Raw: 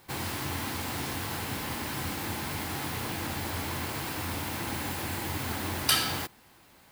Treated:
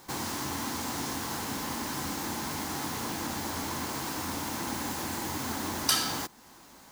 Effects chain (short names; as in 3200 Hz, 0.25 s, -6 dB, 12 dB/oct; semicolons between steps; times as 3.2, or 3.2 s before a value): fifteen-band EQ 100 Hz -8 dB, 250 Hz +5 dB, 1000 Hz +4 dB, 2500 Hz -4 dB, 6300 Hz +8 dB; in parallel at +2 dB: compressor, threshold -42 dBFS, peak gain reduction 22 dB; on the sum: gain -4 dB